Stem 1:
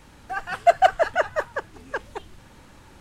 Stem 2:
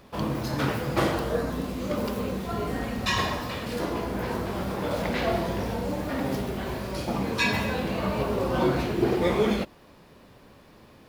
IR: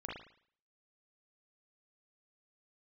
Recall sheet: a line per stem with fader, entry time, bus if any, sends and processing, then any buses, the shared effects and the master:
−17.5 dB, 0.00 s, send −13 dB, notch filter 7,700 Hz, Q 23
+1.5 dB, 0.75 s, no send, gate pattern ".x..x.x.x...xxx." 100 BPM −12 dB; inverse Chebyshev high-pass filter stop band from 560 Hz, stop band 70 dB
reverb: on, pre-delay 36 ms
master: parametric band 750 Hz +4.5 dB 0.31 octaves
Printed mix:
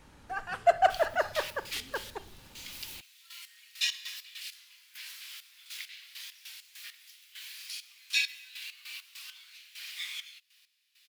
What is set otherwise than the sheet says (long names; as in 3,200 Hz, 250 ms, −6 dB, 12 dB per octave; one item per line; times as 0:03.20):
stem 1 −17.5 dB → −7.5 dB
master: missing parametric band 750 Hz +4.5 dB 0.31 octaves